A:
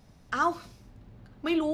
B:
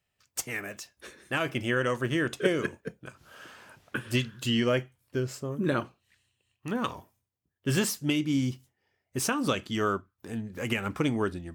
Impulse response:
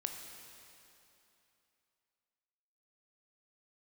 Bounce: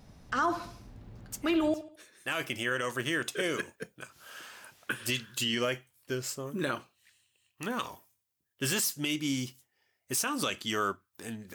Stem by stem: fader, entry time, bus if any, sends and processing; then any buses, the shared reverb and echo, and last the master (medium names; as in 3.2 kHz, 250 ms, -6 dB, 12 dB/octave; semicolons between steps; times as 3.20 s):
+2.0 dB, 0.00 s, no send, echo send -14.5 dB, none
-0.5 dB, 0.95 s, no send, no echo send, tilt EQ +2.5 dB/octave; auto duck -20 dB, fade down 1.80 s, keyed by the first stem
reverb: none
echo: feedback delay 73 ms, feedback 39%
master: peak limiter -19.5 dBFS, peak gain reduction 8 dB